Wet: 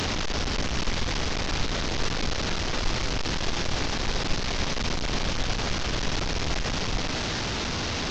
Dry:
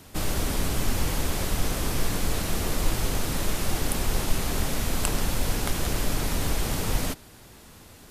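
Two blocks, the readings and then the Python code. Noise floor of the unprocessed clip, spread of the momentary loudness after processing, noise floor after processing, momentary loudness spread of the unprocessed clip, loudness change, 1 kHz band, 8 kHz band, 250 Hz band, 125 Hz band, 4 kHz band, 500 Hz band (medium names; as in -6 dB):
-49 dBFS, 0 LU, -29 dBFS, 1 LU, 0.0 dB, +2.0 dB, -3.5 dB, -0.5 dB, -1.5 dB, +5.0 dB, +0.5 dB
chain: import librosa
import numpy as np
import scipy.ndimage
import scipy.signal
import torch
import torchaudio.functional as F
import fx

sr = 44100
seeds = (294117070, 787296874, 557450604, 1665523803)

y = fx.delta_mod(x, sr, bps=32000, step_db=-17.5)
y = fx.rider(y, sr, range_db=10, speed_s=0.5)
y = y * 10.0 ** (-3.5 / 20.0)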